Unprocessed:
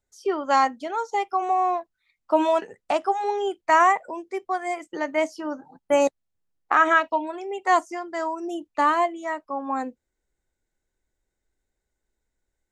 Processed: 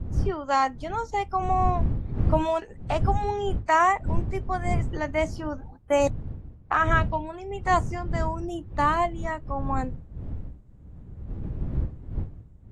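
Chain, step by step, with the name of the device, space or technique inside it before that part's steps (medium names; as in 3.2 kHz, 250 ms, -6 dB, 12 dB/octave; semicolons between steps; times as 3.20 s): smartphone video outdoors (wind noise 97 Hz -26 dBFS; level rider gain up to 3.5 dB; trim -5.5 dB; AAC 48 kbps 48 kHz)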